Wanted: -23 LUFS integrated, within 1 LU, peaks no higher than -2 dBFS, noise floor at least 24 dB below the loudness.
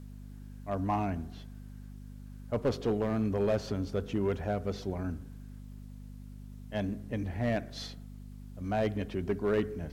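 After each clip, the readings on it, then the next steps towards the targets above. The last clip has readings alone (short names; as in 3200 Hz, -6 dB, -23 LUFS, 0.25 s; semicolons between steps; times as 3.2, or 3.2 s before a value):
clipped 0.7%; flat tops at -22.0 dBFS; hum 50 Hz; harmonics up to 250 Hz; hum level -43 dBFS; loudness -33.0 LUFS; peak -22.0 dBFS; loudness target -23.0 LUFS
-> clip repair -22 dBFS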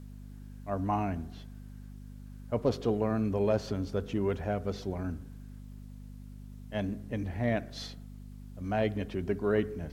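clipped 0.0%; hum 50 Hz; harmonics up to 250 Hz; hum level -43 dBFS
-> de-hum 50 Hz, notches 5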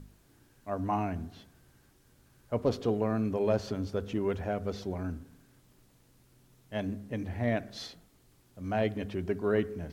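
hum none; loudness -33.0 LUFS; peak -15.0 dBFS; loudness target -23.0 LUFS
-> gain +10 dB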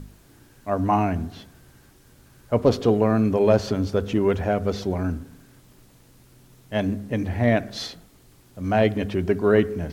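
loudness -23.0 LUFS; peak -5.0 dBFS; noise floor -54 dBFS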